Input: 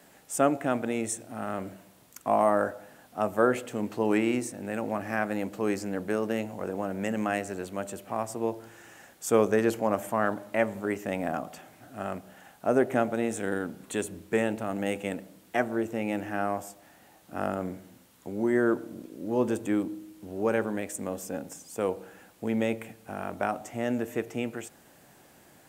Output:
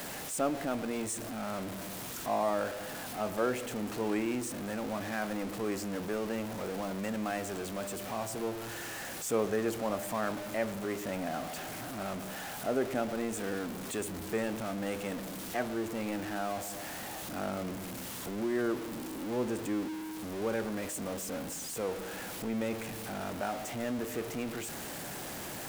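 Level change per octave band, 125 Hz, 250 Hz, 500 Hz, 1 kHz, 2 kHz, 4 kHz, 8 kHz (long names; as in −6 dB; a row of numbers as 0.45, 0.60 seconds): −3.5, −5.0, −6.0, −5.5, −4.5, +3.5, +0.5 decibels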